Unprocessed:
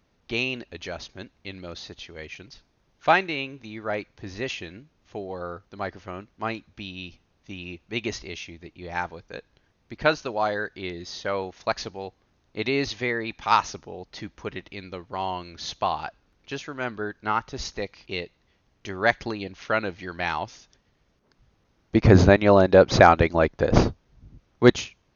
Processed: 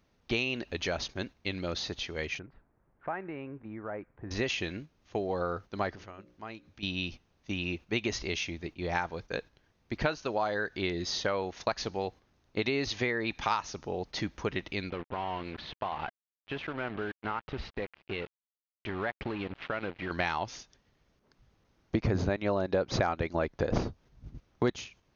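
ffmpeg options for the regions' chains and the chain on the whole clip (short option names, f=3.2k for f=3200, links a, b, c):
-filter_complex "[0:a]asettb=1/sr,asplit=3[a][b][c];[a]atrim=end=2.394[d];[b]atrim=start=2.39:end=4.31,asetpts=PTS-STARTPTS,afade=t=in:d=0.004:c=qsin,afade=t=out:st=1.916:d=0.004:c=qsin,lowpass=f=1.7k:w=0.5412,lowpass=f=1.7k:w=1.3066,acompressor=threshold=-45dB:ratio=2.5:attack=3.2:release=140:knee=1:detection=peak[e];[c]atrim=start=4.306[f];[d][e]acrossfade=d=0.004:c1=hsin:c2=qsin[g];[g][f]acrossfade=d=0.004:c1=qsin:c2=hsin,asettb=1/sr,asplit=3[h][i][j];[h]atrim=end=5.954[k];[i]atrim=start=5.95:end=6.83,asetpts=PTS-STARTPTS,afade=t=in:d=0.004:c=qsin,afade=t=out:st=0.876:d=0.004:c=qsin,bandreject=f=60:t=h:w=6,bandreject=f=120:t=h:w=6,bandreject=f=180:t=h:w=6,bandreject=f=240:t=h:w=6,bandreject=f=300:t=h:w=6,bandreject=f=360:t=h:w=6,bandreject=f=420:t=h:w=6,bandreject=f=480:t=h:w=6,bandreject=f=540:t=h:w=6,bandreject=f=600:t=h:w=6,acompressor=threshold=-48dB:ratio=3:attack=3.2:release=140:knee=1:detection=peak[l];[j]atrim=start=6.826[m];[k][l]acrossfade=d=0.004:c1=hsin:c2=qsin[n];[n][m]acrossfade=d=0.004:c1=qsin:c2=hsin,asettb=1/sr,asplit=3[o][p][q];[o]atrim=end=14.904[r];[p]atrim=start=14.9:end=20.11,asetpts=PTS-STARTPTS,afade=t=in:d=0.004:c=qsin,afade=t=out:st=5.206:d=0.004:c=qsin,acompressor=threshold=-37dB:ratio=3:attack=3.2:release=140:knee=1:detection=peak,acrusher=bits=6:mix=0:aa=0.5,lowpass=f=3.2k:w=0.5412,lowpass=f=3.2k:w=1.3066[s];[q]atrim=start=20.106[t];[r][s]acrossfade=d=0.004:c1=hsin:c2=qsin[u];[u][t]acrossfade=d=0.004:c1=qsin:c2=hsin,agate=range=-7dB:threshold=-47dB:ratio=16:detection=peak,acompressor=threshold=-31dB:ratio=6,volume=4dB"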